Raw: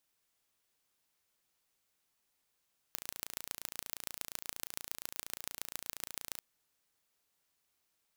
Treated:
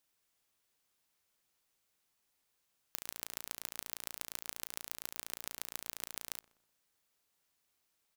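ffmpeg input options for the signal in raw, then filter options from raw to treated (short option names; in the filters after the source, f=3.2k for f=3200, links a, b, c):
-f lavfi -i "aevalsrc='0.335*eq(mod(n,1547),0)*(0.5+0.5*eq(mod(n,6188),0))':d=3.46:s=44100"
-filter_complex "[0:a]asplit=2[a][b];[b]adelay=125,lowpass=f=1.5k:p=1,volume=-20dB,asplit=2[c][d];[d]adelay=125,lowpass=f=1.5k:p=1,volume=0.4,asplit=2[e][f];[f]adelay=125,lowpass=f=1.5k:p=1,volume=0.4[g];[a][c][e][g]amix=inputs=4:normalize=0"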